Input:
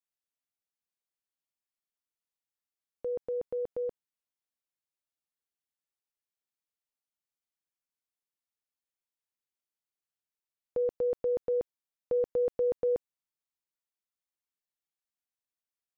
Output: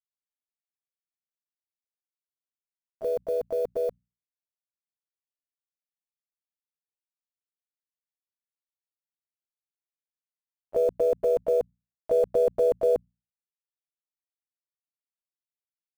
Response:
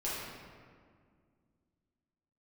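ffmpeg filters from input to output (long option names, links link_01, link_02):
-filter_complex "[0:a]acrusher=bits=8:mix=0:aa=0.000001,bandreject=frequency=60:width_type=h:width=6,bandreject=frequency=120:width_type=h:width=6,bandreject=frequency=180:width_type=h:width=6,asplit=4[link_01][link_02][link_03][link_04];[link_02]asetrate=37084,aresample=44100,atempo=1.18921,volume=-13dB[link_05];[link_03]asetrate=52444,aresample=44100,atempo=0.840896,volume=-16dB[link_06];[link_04]asetrate=58866,aresample=44100,atempo=0.749154,volume=-8dB[link_07];[link_01][link_05][link_06][link_07]amix=inputs=4:normalize=0,volume=5dB"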